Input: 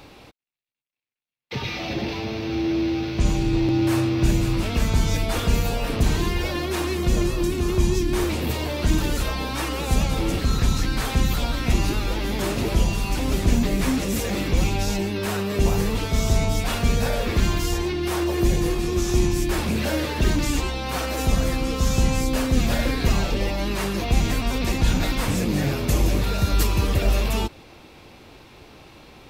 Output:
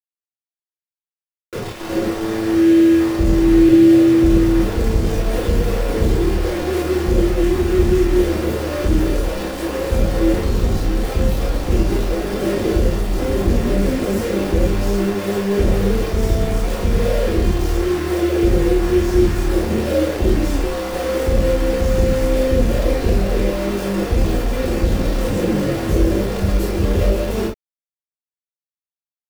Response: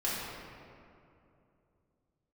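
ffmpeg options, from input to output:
-filter_complex "[0:a]lowshelf=frequency=710:width_type=q:width=3:gain=11,aeval=exprs='val(0)*gte(abs(val(0)),0.168)':channel_layout=same[link_01];[1:a]atrim=start_sample=2205,atrim=end_sample=3087[link_02];[link_01][link_02]afir=irnorm=-1:irlink=0,volume=-10.5dB"

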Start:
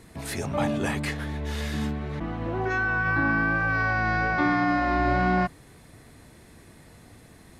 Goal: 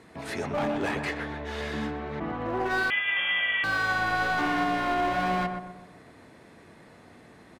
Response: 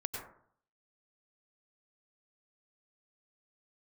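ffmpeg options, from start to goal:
-filter_complex "[0:a]highpass=frequency=390:poles=1,aemphasis=mode=reproduction:type=75fm,asplit=2[link_01][link_02];[link_02]alimiter=limit=-19.5dB:level=0:latency=1:release=234,volume=3dB[link_03];[link_01][link_03]amix=inputs=2:normalize=0,asoftclip=type=hard:threshold=-19.5dB,asplit=2[link_04][link_05];[link_05]adelay=125,lowpass=frequency=1400:poles=1,volume=-5dB,asplit=2[link_06][link_07];[link_07]adelay=125,lowpass=frequency=1400:poles=1,volume=0.46,asplit=2[link_08][link_09];[link_09]adelay=125,lowpass=frequency=1400:poles=1,volume=0.46,asplit=2[link_10][link_11];[link_11]adelay=125,lowpass=frequency=1400:poles=1,volume=0.46,asplit=2[link_12][link_13];[link_13]adelay=125,lowpass=frequency=1400:poles=1,volume=0.46,asplit=2[link_14][link_15];[link_15]adelay=125,lowpass=frequency=1400:poles=1,volume=0.46[link_16];[link_04][link_06][link_08][link_10][link_12][link_14][link_16]amix=inputs=7:normalize=0,asettb=1/sr,asplit=3[link_17][link_18][link_19];[link_17]atrim=end=2.904[link_20];[link_18]atrim=start=2.9:end=3.64,asetpts=PTS-STARTPTS,afade=type=in:duration=0.004:curve=qsin,afade=type=out:start_time=0.736:duration=0.004:curve=qsin,lowpass=frequency=3000:width_type=q:width=0.5098,lowpass=frequency=3000:width_type=q:width=0.6013,lowpass=frequency=3000:width_type=q:width=0.9,lowpass=frequency=3000:width_type=q:width=2.563,afreqshift=-3500[link_21];[link_19]atrim=start=3.636[link_22];[link_20][link_21]acrossfade=duration=0.004:curve1=hsin:curve2=qsin[link_23];[link_23][link_22]acrossfade=duration=0.004:curve1=qsin:curve2=hsin,volume=-5dB"

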